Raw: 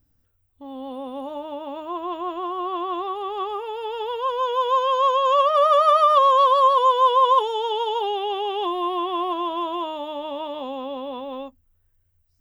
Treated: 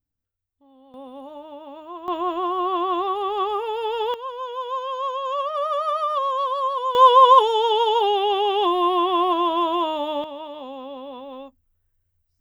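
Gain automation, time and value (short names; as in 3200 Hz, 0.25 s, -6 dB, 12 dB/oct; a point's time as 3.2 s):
-17.5 dB
from 0.94 s -6.5 dB
from 2.08 s +4 dB
from 4.14 s -7.5 dB
from 6.95 s +5 dB
from 10.24 s -4.5 dB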